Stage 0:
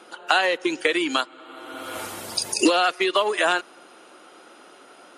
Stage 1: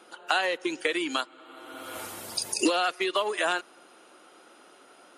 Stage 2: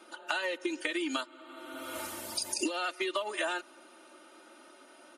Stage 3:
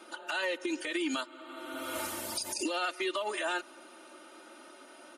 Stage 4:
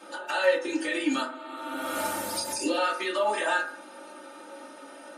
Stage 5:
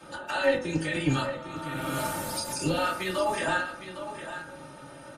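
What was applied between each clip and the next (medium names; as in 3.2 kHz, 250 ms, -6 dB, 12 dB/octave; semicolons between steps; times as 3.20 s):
treble shelf 12 kHz +8 dB; trim -6 dB
comb 3.3 ms, depth 88%; compression 12:1, threshold -25 dBFS, peak gain reduction 12 dB; trim -3.5 dB
peak limiter -26.5 dBFS, peak gain reduction 10.5 dB; trim +3 dB
reverberation, pre-delay 3 ms, DRR -5.5 dB
octave divider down 1 oct, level +2 dB; AM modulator 260 Hz, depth 20%; delay 808 ms -11 dB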